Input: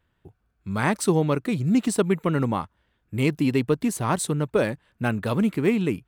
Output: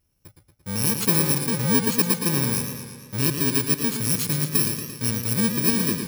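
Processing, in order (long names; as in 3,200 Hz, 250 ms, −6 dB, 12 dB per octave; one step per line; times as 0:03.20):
samples in bit-reversed order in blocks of 64 samples
parametric band 760 Hz −5 dB 0.8 octaves, from 0:03.17 −14 dB
feedback echo with a swinging delay time 114 ms, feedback 64%, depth 88 cents, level −7 dB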